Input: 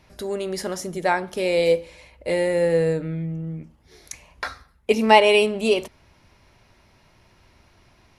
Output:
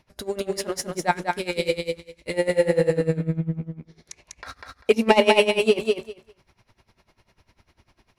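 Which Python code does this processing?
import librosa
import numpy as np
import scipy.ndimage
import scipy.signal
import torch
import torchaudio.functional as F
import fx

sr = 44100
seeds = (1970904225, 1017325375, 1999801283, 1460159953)

y = fx.peak_eq(x, sr, hz=740.0, db=-12.5, octaves=1.4, at=(1.11, 2.34))
y = fx.leveller(y, sr, passes=1)
y = fx.air_absorb(y, sr, metres=60.0, at=(3.15, 4.46))
y = fx.echo_feedback(y, sr, ms=197, feedback_pct=16, wet_db=-3.5)
y = y * 10.0 ** (-19 * (0.5 - 0.5 * np.cos(2.0 * np.pi * 10.0 * np.arange(len(y)) / sr)) / 20.0)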